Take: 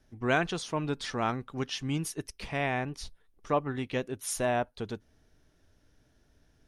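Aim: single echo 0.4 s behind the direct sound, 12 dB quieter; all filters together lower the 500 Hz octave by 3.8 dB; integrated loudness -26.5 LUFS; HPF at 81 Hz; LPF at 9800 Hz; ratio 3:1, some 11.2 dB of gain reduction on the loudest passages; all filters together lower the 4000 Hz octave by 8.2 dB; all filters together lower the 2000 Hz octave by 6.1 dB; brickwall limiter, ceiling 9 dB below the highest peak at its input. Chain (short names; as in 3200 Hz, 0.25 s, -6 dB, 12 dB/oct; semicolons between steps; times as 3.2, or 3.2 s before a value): HPF 81 Hz; LPF 9800 Hz; bell 500 Hz -4.5 dB; bell 2000 Hz -6 dB; bell 4000 Hz -9 dB; compressor 3:1, threshold -40 dBFS; limiter -37.5 dBFS; echo 0.4 s -12 dB; gain +21 dB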